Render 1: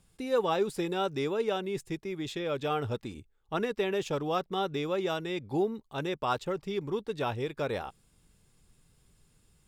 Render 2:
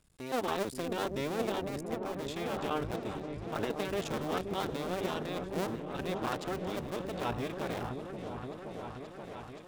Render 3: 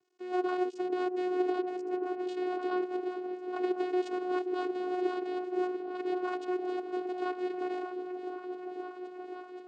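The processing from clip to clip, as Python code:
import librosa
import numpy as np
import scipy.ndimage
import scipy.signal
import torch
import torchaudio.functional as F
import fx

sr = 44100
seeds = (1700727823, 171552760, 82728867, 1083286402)

y1 = fx.cycle_switch(x, sr, every=2, mode='muted')
y1 = fx.transient(y1, sr, attack_db=-1, sustain_db=3)
y1 = fx.echo_opening(y1, sr, ms=526, hz=400, octaves=1, feedback_pct=70, wet_db=-3)
y1 = F.gain(torch.from_numpy(y1), -2.0).numpy()
y2 = fx.vocoder(y1, sr, bands=8, carrier='saw', carrier_hz=364.0)
y2 = F.gain(torch.from_numpy(y2), 3.5).numpy()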